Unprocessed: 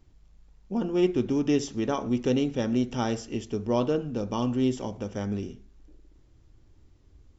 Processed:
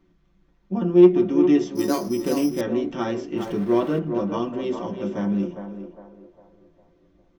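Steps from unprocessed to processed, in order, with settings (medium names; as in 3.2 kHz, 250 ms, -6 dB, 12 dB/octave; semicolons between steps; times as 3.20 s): 3.37–3.99 s: jump at every zero crossing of -35.5 dBFS; comb 5.9 ms, depth 40%; hard clipper -15.5 dBFS, distortion -24 dB; 4.53–5.13 s: echo throw 340 ms, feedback 30%, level -10 dB; band-passed feedback delay 404 ms, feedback 46%, band-pass 670 Hz, level -6 dB; reverberation RT60 0.15 s, pre-delay 3 ms, DRR 4 dB; 1.75–2.61 s: careless resampling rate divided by 8×, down none, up hold; trim -6.5 dB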